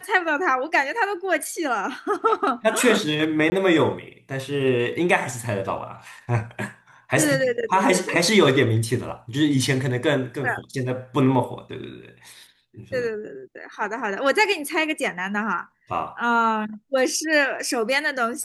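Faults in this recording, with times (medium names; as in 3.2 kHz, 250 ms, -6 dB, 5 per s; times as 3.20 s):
3.50–3.52 s: dropout 20 ms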